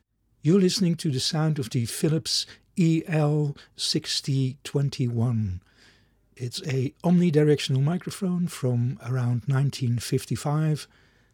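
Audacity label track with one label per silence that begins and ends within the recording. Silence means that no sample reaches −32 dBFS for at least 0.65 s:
5.570000	6.410000	silence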